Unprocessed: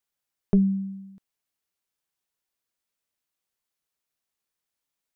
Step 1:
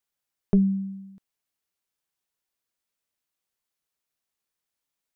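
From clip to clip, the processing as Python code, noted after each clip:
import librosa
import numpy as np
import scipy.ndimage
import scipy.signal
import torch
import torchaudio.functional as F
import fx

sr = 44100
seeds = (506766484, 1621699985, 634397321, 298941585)

y = x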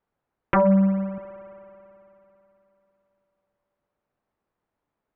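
y = scipy.signal.sosfilt(scipy.signal.butter(2, 1000.0, 'lowpass', fs=sr, output='sos'), x)
y = fx.fold_sine(y, sr, drive_db=13, ceiling_db=-12.0)
y = fx.rev_spring(y, sr, rt60_s=3.3, pass_ms=(55,), chirp_ms=35, drr_db=12.0)
y = y * librosa.db_to_amplitude(-2.0)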